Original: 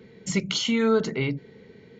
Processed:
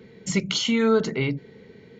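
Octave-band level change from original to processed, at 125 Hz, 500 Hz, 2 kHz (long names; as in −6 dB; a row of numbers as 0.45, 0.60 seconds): +1.5, +1.5, +1.5 decibels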